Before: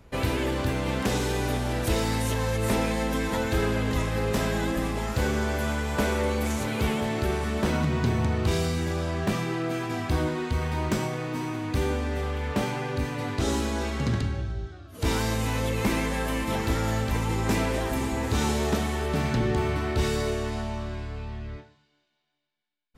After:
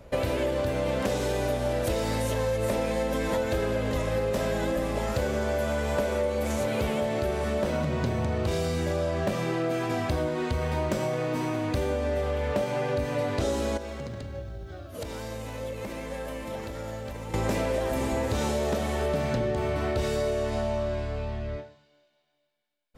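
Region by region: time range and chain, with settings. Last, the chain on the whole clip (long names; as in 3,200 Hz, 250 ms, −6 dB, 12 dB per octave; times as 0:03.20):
0:13.77–0:17.34: downward compressor 12 to 1, threshold −36 dBFS + bit-depth reduction 12 bits, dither none
whole clip: parametric band 570 Hz +14 dB 0.36 octaves; downward compressor, threshold −26 dBFS; level +2 dB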